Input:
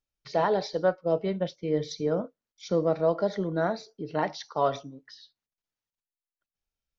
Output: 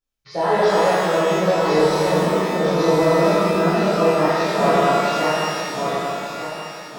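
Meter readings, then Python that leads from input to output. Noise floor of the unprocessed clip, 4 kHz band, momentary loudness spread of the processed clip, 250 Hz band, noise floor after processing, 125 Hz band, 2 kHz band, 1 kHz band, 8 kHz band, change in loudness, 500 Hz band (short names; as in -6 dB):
under -85 dBFS, +14.5 dB, 9 LU, +11.5 dB, -38 dBFS, +10.5 dB, +16.0 dB, +13.5 dB, n/a, +10.0 dB, +10.5 dB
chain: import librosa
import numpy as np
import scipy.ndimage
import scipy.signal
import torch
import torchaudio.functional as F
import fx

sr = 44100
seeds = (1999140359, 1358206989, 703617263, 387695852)

y = fx.reverse_delay_fb(x, sr, ms=591, feedback_pct=57, wet_db=-0.5)
y = fx.rev_shimmer(y, sr, seeds[0], rt60_s=1.9, semitones=12, shimmer_db=-8, drr_db=-11.0)
y = y * 10.0 ** (-4.0 / 20.0)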